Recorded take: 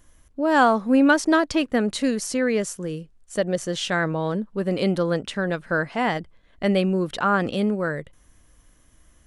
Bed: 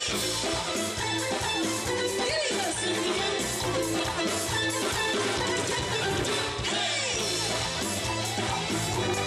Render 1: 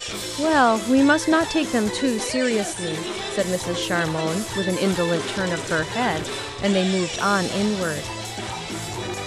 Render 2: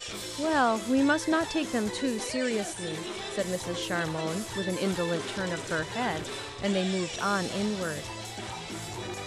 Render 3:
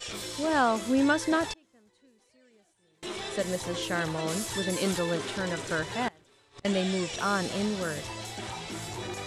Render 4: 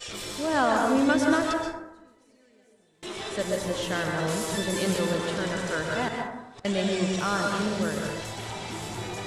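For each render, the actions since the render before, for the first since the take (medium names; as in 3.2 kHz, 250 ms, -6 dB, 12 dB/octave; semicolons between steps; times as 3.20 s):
add bed -1.5 dB
trim -7.5 dB
1.53–3.03 s: inverted gate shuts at -30 dBFS, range -33 dB; 4.28–4.99 s: treble shelf 4.2 kHz +7.5 dB; 6.08–6.65 s: inverted gate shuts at -29 dBFS, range -25 dB
plate-style reverb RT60 0.98 s, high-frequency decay 0.35×, pre-delay 115 ms, DRR 1 dB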